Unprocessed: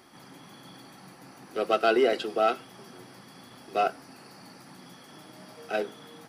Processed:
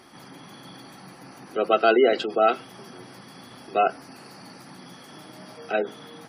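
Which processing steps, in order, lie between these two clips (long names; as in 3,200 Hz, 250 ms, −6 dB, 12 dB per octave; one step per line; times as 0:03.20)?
gate on every frequency bin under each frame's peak −30 dB strong
level +4.5 dB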